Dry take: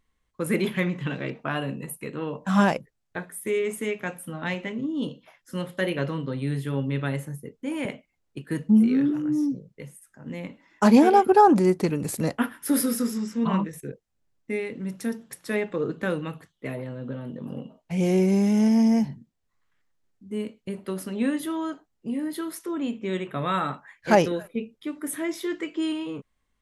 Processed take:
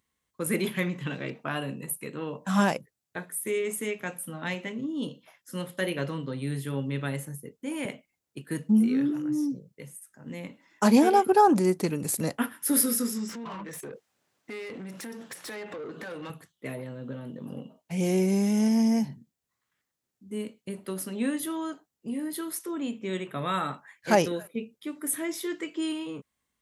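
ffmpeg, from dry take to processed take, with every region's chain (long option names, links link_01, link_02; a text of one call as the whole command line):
ffmpeg -i in.wav -filter_complex "[0:a]asettb=1/sr,asplit=3[link_01][link_02][link_03];[link_01]atrim=end=13.294[link_04];[link_02]atrim=start=13.29:end=16.3,asetpts=PTS-STARTPTS,afade=type=in:duration=0.004:curve=qsin,afade=type=out:start_time=3.006:duration=0.004:curve=qsin,acompressor=threshold=-39dB:ratio=8:attack=3.2:release=140:knee=1:detection=peak,asplit=2[link_05][link_06];[link_06]highpass=frequency=720:poles=1,volume=25dB,asoftclip=type=tanh:threshold=-25.5dB[link_07];[link_05][link_07]amix=inputs=2:normalize=0,lowpass=frequency=2200:poles=1,volume=-6dB[link_08];[link_03]atrim=start=16.296[link_09];[link_04][link_08]acrossfade=duration=0.004:curve1=hsin:curve2=qsin[link_10];[link_10][link_09]acrossfade=duration=0.004:curve1=qsin:curve2=hsin,highpass=91,highshelf=frequency=5800:gain=10.5,volume=-3.5dB" out.wav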